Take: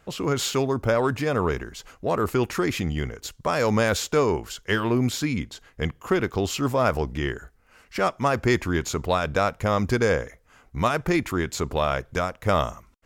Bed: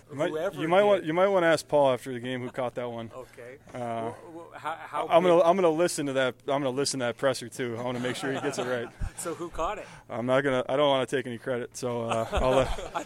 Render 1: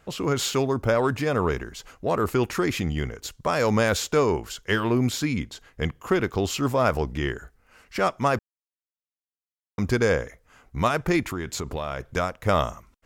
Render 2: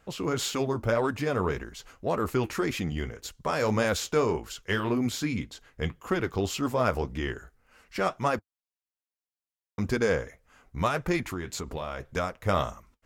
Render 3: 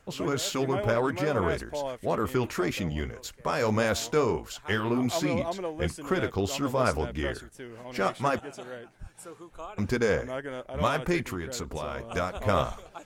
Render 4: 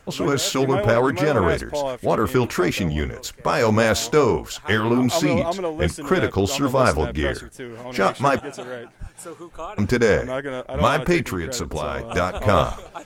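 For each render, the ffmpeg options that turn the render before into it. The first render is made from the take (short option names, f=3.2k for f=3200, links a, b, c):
-filter_complex "[0:a]asettb=1/sr,asplit=3[a][b][c];[a]atrim=end=11.224[d];[b]atrim=start=11.22:end=12,asetpts=PTS-STARTPTS,afade=t=in:d=0.004:c=qsin,afade=t=out:st=0.776:d=0.004:c=qsin,acompressor=threshold=-25dB:ratio=6:attack=3.2:release=140:knee=1:detection=peak[e];[c]atrim=start=11.996[f];[d][e]acrossfade=d=0.004:c1=hsin:c2=qsin[g];[g][f]acrossfade=d=0.004:c1=qsin:c2=hsin,asplit=3[h][i][j];[h]atrim=end=8.39,asetpts=PTS-STARTPTS,afade=t=out:st=8.386:d=0.004:c=hsin[k];[i]atrim=start=8.39:end=9.78,asetpts=PTS-STARTPTS,volume=0[l];[j]atrim=start=9.78,asetpts=PTS-STARTPTS,afade=t=in:d=0.004:c=hsin[m];[k][l][m]concat=n=3:v=0:a=1"
-af "flanger=delay=3.6:depth=7.4:regen=-53:speed=1.8:shape=sinusoidal"
-filter_complex "[1:a]volume=-11dB[a];[0:a][a]amix=inputs=2:normalize=0"
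-af "volume=8dB,alimiter=limit=-3dB:level=0:latency=1"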